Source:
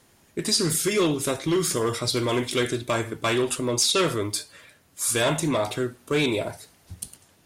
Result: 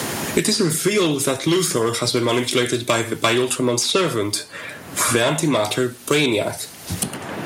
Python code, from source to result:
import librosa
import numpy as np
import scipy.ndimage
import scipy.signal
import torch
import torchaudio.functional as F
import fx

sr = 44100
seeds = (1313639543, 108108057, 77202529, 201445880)

y = scipy.signal.sosfilt(scipy.signal.butter(2, 100.0, 'highpass', fs=sr, output='sos'), x)
y = fx.band_squash(y, sr, depth_pct=100)
y = y * librosa.db_to_amplitude(5.0)